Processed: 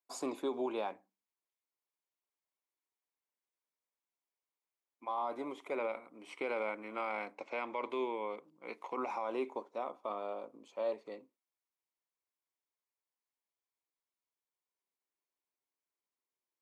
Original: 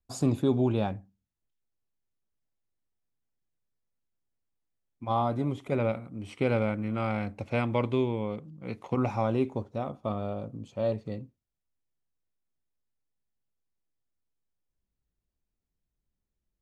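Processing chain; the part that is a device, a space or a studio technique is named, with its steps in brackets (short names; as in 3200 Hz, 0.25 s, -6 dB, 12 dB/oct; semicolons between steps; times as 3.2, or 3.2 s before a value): laptop speaker (HPF 330 Hz 24 dB/oct; bell 1000 Hz +9 dB 0.46 oct; bell 2200 Hz +7 dB 0.24 oct; limiter -21.5 dBFS, peak gain reduction 9 dB); 7.35–7.9 LPF 7500 Hz 24 dB/oct; gain -5.5 dB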